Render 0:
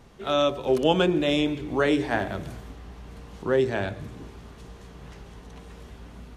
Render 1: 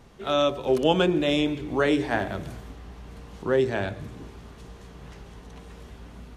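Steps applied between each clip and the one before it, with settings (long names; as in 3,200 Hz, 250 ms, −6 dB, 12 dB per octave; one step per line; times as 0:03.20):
no processing that can be heard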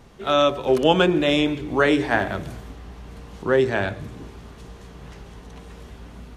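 dynamic equaliser 1,500 Hz, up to +4 dB, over −36 dBFS, Q 0.79
level +3 dB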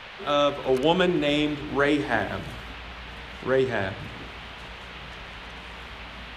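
noise in a band 510–3,300 Hz −38 dBFS
level −4 dB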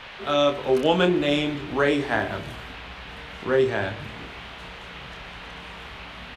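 double-tracking delay 28 ms −6.5 dB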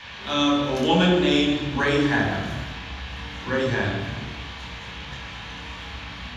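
convolution reverb RT60 1.0 s, pre-delay 3 ms, DRR −1.5 dB
level −4 dB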